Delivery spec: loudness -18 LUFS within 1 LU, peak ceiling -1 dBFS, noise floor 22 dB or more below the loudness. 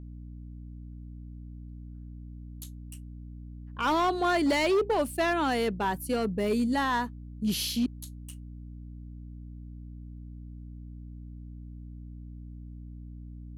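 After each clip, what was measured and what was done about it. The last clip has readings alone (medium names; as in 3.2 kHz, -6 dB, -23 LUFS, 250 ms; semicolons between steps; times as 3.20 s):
clipped samples 0.9%; clipping level -21.0 dBFS; hum 60 Hz; highest harmonic 300 Hz; hum level -41 dBFS; loudness -27.5 LUFS; peak level -21.0 dBFS; loudness target -18.0 LUFS
-> clip repair -21 dBFS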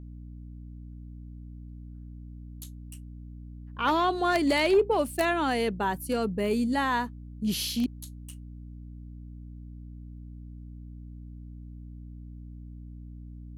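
clipped samples 0.0%; hum 60 Hz; highest harmonic 300 Hz; hum level -40 dBFS
-> hum notches 60/120/180/240/300 Hz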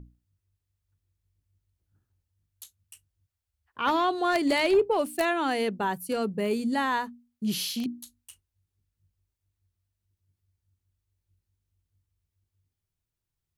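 hum not found; loudness -27.0 LUFS; peak level -12.0 dBFS; loudness target -18.0 LUFS
-> trim +9 dB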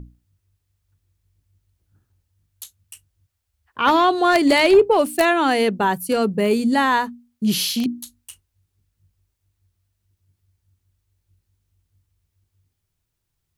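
loudness -18.0 LUFS; peak level -3.0 dBFS; noise floor -77 dBFS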